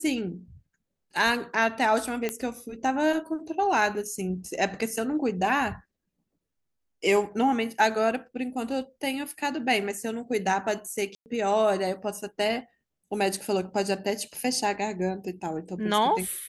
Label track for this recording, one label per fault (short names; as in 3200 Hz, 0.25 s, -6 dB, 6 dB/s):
2.290000	2.290000	pop -14 dBFS
11.150000	11.260000	gap 0.109 s